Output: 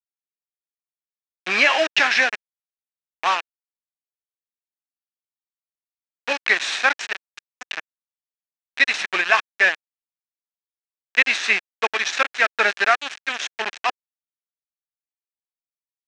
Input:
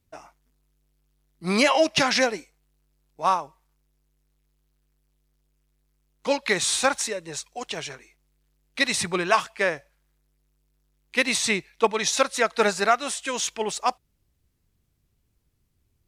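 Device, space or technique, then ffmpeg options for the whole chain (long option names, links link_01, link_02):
hand-held game console: -af "acrusher=bits=3:mix=0:aa=0.000001,highpass=460,equalizer=frequency=500:width_type=q:width=4:gain=-7,equalizer=frequency=990:width_type=q:width=4:gain=-3,equalizer=frequency=1700:width_type=q:width=4:gain=9,equalizer=frequency=2500:width_type=q:width=4:gain=7,equalizer=frequency=4700:width_type=q:width=4:gain=-5,lowpass=frequency=5300:width=0.5412,lowpass=frequency=5300:width=1.3066,volume=1.5dB"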